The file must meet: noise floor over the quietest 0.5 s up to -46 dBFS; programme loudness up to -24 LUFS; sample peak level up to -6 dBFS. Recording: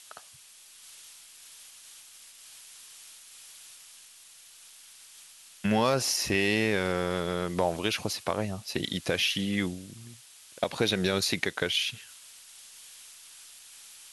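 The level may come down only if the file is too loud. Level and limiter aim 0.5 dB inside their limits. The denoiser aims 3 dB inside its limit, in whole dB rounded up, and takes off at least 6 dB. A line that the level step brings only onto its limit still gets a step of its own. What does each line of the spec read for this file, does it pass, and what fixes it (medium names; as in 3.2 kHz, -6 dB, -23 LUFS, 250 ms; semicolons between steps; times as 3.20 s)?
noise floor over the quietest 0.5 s -53 dBFS: pass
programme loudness -28.0 LUFS: pass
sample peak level -10.5 dBFS: pass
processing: none needed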